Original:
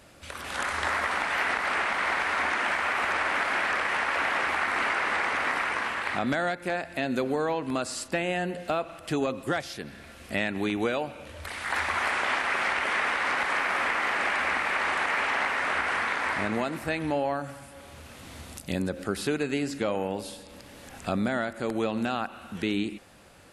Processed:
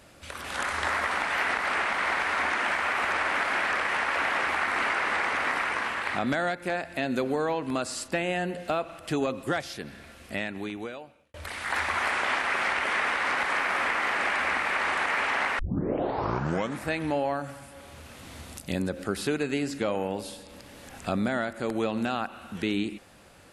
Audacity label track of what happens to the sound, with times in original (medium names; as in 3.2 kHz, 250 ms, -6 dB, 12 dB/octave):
9.910000	11.340000	fade out
15.590000	15.590000	tape start 1.28 s